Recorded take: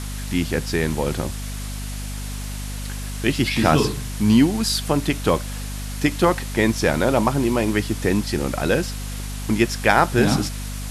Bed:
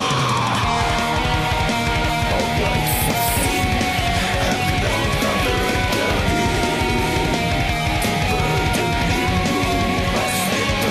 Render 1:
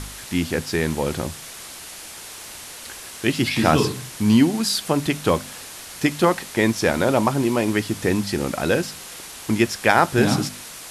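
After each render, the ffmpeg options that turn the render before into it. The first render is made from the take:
-af "bandreject=f=50:t=h:w=4,bandreject=f=100:t=h:w=4,bandreject=f=150:t=h:w=4,bandreject=f=200:t=h:w=4,bandreject=f=250:t=h:w=4"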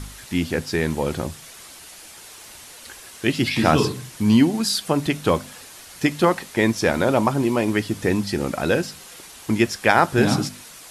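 -af "afftdn=nr=6:nf=-38"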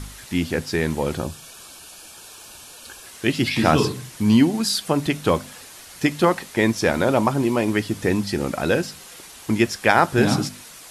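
-filter_complex "[0:a]asettb=1/sr,asplit=3[a][b][c];[a]atrim=end=1.174[d];[b]atrim=start=1.17:end=3.05,asetpts=PTS-STARTPTS,afade=t=in:d=0.004:c=qsin,afade=t=out:st=1.876:d=0.004:c=qsin,asuperstop=centerf=2000:order=8:qfactor=5[e];[c]atrim=start=3.046[f];[d][e]acrossfade=d=0.004:c1=hsin:c2=qsin[g];[g][f]acrossfade=d=0.004:c1=qsin:c2=hsin"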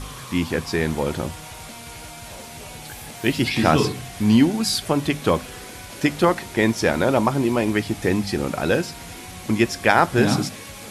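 -filter_complex "[1:a]volume=-20.5dB[a];[0:a][a]amix=inputs=2:normalize=0"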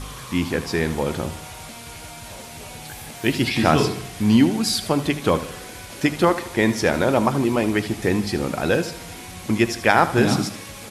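-af "aecho=1:1:78|156|234|312|390:0.2|0.0978|0.0479|0.0235|0.0115"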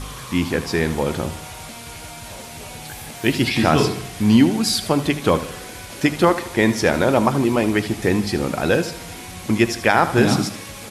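-af "volume=2dB,alimiter=limit=-3dB:level=0:latency=1"

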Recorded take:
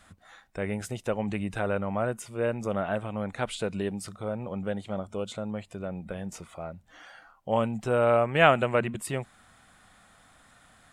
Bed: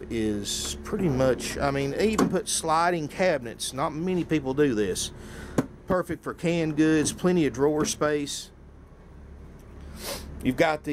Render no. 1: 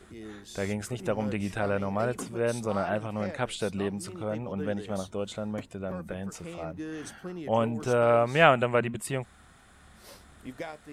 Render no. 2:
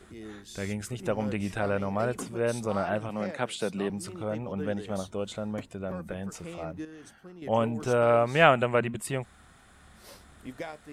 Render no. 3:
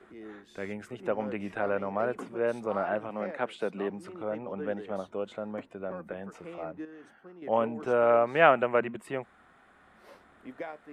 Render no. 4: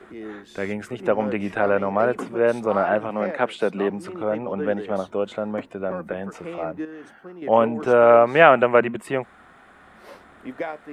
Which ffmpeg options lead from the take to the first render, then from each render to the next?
-filter_complex "[1:a]volume=-16.5dB[a];[0:a][a]amix=inputs=2:normalize=0"
-filter_complex "[0:a]asettb=1/sr,asplit=3[a][b][c];[a]atrim=end=0.424[d];[b]atrim=start=0.42:end=1.03,asetpts=PTS-STARTPTS,afade=t=in:d=0.004:c=qsin,afade=t=out:st=0.606:d=0.004:c=qsin,equalizer=f=710:t=o:w=1.7:g=-7[e];[c]atrim=start=1.026[f];[d][e]acrossfade=d=0.004:c1=hsin:c2=qsin[g];[g][f]acrossfade=d=0.004:c1=qsin:c2=hsin,asettb=1/sr,asplit=3[h][i][j];[h]atrim=end=3.094[k];[i]atrim=start=3.09:end=3.9,asetpts=PTS-STARTPTS,afade=t=in:d=0.004:c=qsin,afade=t=out:st=0.806:d=0.004:c=qsin,highpass=f=130:w=0.5412,highpass=f=130:w=1.3066[l];[j]atrim=start=3.896[m];[k][l]acrossfade=d=0.004:c1=hsin:c2=qsin[n];[n][m]acrossfade=d=0.004:c1=qsin:c2=hsin,asplit=3[o][p][q];[o]atrim=end=6.852[r];[p]atrim=start=6.848:end=7.422,asetpts=PTS-STARTPTS,volume=-9dB[s];[q]atrim=start=7.418[t];[r][s]acrossfade=d=0.004:c1=hsin:c2=hsin[u];[u][t]acrossfade=d=0.004:c1=hsin:c2=hsin"
-filter_complex "[0:a]acrossover=split=220 2600:gain=0.158 1 0.126[a][b][c];[a][b][c]amix=inputs=3:normalize=0"
-af "volume=9.5dB,alimiter=limit=-1dB:level=0:latency=1"

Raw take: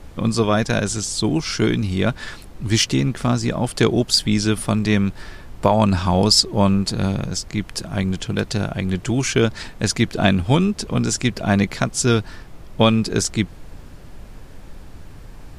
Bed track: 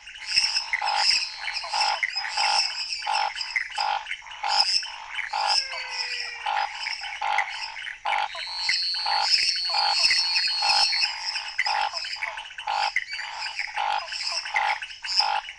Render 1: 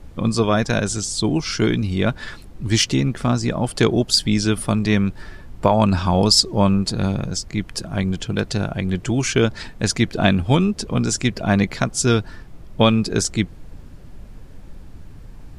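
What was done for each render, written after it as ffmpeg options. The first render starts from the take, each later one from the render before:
-af "afftdn=nr=6:nf=-40"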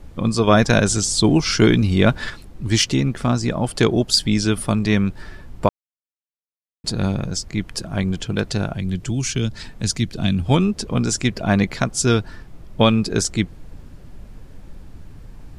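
-filter_complex "[0:a]asettb=1/sr,asplit=3[a][b][c];[a]atrim=end=8.744[d];[b]atrim=start=8.74:end=10.49,asetpts=PTS-STARTPTS,afade=t=in:d=0.004:c=qsin,afade=t=out:st=1.746:d=0.004:c=qsin,acrossover=split=250|3000[e][f][g];[f]acompressor=threshold=-43dB:ratio=2:attack=3.2:release=140:knee=2.83:detection=peak[h];[e][h][g]amix=inputs=3:normalize=0[i];[c]atrim=start=10.486[j];[d][i]acrossfade=d=0.004:c1=hsin:c2=qsin[k];[k][j]acrossfade=d=0.004:c1=qsin:c2=hsin,asplit=5[l][m][n][o][p];[l]atrim=end=0.472[q];[m]atrim=start=0.468:end=2.302,asetpts=PTS-STARTPTS,volume=4.5dB[r];[n]atrim=start=2.298:end=5.69,asetpts=PTS-STARTPTS,afade=t=out:st=3.388:d=0.004:c=hsin[s];[o]atrim=start=5.69:end=6.84,asetpts=PTS-STARTPTS,volume=0[t];[p]atrim=start=6.84,asetpts=PTS-STARTPTS,afade=t=in:d=0.004:c=hsin[u];[q][r]acrossfade=d=0.004:c1=hsin:c2=hsin[v];[s][t][u]concat=n=3:v=0:a=1[w];[v][w]acrossfade=d=0.004:c1=hsin:c2=hsin"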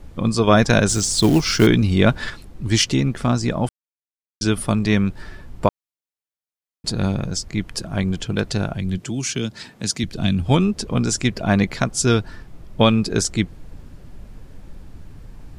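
-filter_complex "[0:a]asettb=1/sr,asplit=3[a][b][c];[a]atrim=end=0.894[d];[b]atrim=start=0.89:end=1.67,asetpts=PTS-STARTPTS,afade=t=in:d=0.004:c=qsin,afade=t=out:st=0.776:d=0.004:c=qsin,acrusher=bits=5:mode=log:mix=0:aa=0.000001[e];[c]atrim=start=1.666[f];[d][e]acrossfade=d=0.004:c1=hsin:c2=qsin[g];[g][f]acrossfade=d=0.004:c1=qsin:c2=hsin,asettb=1/sr,asplit=3[h][i][j];[h]atrim=end=8.984[k];[i]atrim=start=8.98:end=10.04,asetpts=PTS-STARTPTS,afade=t=in:d=0.004:c=qsin,afade=t=out:st=1.056:d=0.004:c=qsin,highpass=160[l];[j]atrim=start=10.036[m];[k][l]acrossfade=d=0.004:c1=hsin:c2=qsin[n];[n][m]acrossfade=d=0.004:c1=qsin:c2=hsin,asplit=3[o][p][q];[o]atrim=end=3.69,asetpts=PTS-STARTPTS,afade=t=out:st=3.686:d=0.004:c=hsin[r];[p]atrim=start=3.69:end=4.41,asetpts=PTS-STARTPTS,volume=0[s];[q]atrim=start=4.41,asetpts=PTS-STARTPTS,afade=t=in:d=0.004:c=hsin[t];[r][s][t]concat=n=3:v=0:a=1"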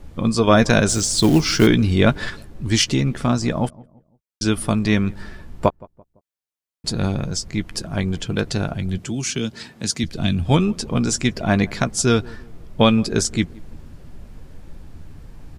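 -filter_complex "[0:a]asplit=2[a][b];[b]adelay=13,volume=-13dB[c];[a][c]amix=inputs=2:normalize=0,asplit=2[d][e];[e]adelay=169,lowpass=f=1k:p=1,volume=-22.5dB,asplit=2[f][g];[g]adelay=169,lowpass=f=1k:p=1,volume=0.43,asplit=2[h][i];[i]adelay=169,lowpass=f=1k:p=1,volume=0.43[j];[d][f][h][j]amix=inputs=4:normalize=0"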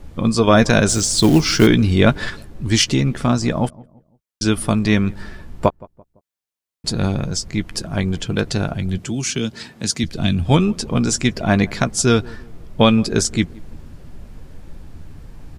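-af "volume=2dB,alimiter=limit=-1dB:level=0:latency=1"

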